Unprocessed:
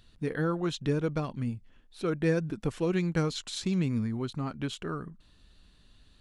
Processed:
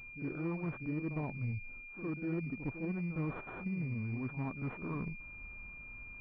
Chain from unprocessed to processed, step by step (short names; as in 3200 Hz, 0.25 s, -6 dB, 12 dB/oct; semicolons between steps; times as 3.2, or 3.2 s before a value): reverse; compressor 5:1, threshold -42 dBFS, peak gain reduction 18 dB; reverse; formant shift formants -3 st; reverse echo 59 ms -9.5 dB; pulse-width modulation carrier 2400 Hz; gain +5.5 dB